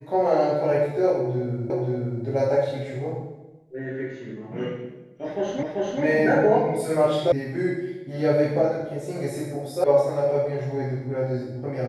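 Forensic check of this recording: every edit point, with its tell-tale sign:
1.7 repeat of the last 0.53 s
5.63 repeat of the last 0.39 s
7.32 sound cut off
9.84 sound cut off

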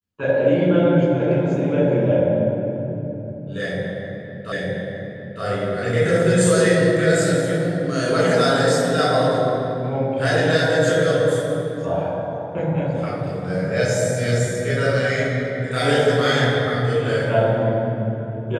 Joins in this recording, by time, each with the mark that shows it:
4.52 repeat of the last 0.91 s

